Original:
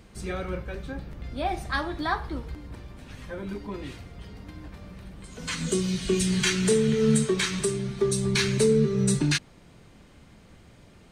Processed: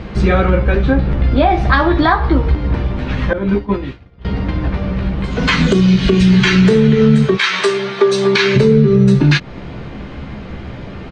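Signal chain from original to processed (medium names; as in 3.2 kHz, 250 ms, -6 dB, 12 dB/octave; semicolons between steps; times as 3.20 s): treble shelf 8.3 kHz -6.5 dB; 7.35–8.55 s: high-pass 960 Hz -> 430 Hz 12 dB/octave; distance through air 220 m; doubling 15 ms -7 dB; 3.33–4.25 s: expander -26 dBFS; compression 4:1, threshold -32 dBFS, peak gain reduction 12.5 dB; loudness maximiser +24.5 dB; trim -1 dB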